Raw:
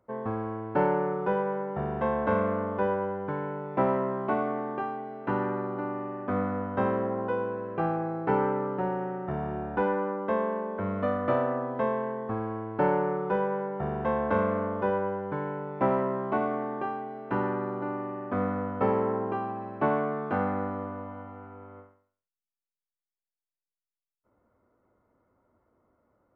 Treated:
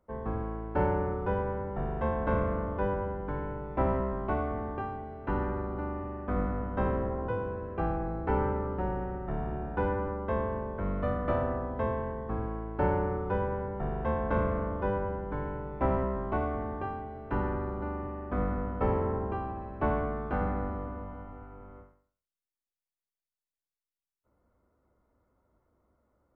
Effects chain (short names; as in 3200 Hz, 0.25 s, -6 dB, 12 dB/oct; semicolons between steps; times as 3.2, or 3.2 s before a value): octaver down 2 oct, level +3 dB; gain -4 dB